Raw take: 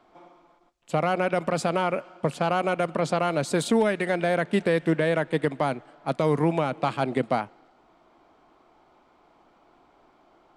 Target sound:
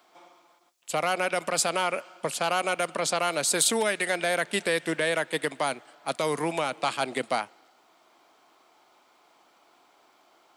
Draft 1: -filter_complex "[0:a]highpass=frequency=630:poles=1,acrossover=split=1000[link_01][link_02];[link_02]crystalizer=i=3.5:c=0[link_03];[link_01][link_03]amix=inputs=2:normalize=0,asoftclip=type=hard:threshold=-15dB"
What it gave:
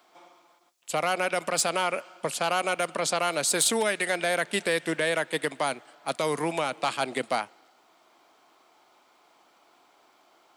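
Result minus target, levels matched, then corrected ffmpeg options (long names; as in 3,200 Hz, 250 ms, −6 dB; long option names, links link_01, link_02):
hard clipping: distortion +28 dB
-filter_complex "[0:a]highpass=frequency=630:poles=1,acrossover=split=1000[link_01][link_02];[link_02]crystalizer=i=3.5:c=0[link_03];[link_01][link_03]amix=inputs=2:normalize=0,asoftclip=type=hard:threshold=-8.5dB"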